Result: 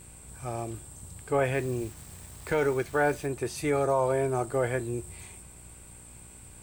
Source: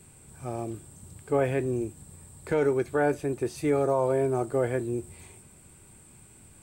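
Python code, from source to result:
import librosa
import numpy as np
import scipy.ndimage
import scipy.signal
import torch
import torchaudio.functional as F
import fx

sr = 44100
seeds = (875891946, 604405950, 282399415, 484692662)

y = fx.delta_hold(x, sr, step_db=-49.5, at=(1.54, 3.27))
y = fx.peak_eq(y, sr, hz=270.0, db=-8.5, octaves=2.5)
y = fx.dmg_buzz(y, sr, base_hz=60.0, harmonics=19, level_db=-58.0, tilt_db=-6, odd_only=False)
y = y * librosa.db_to_amplitude(4.5)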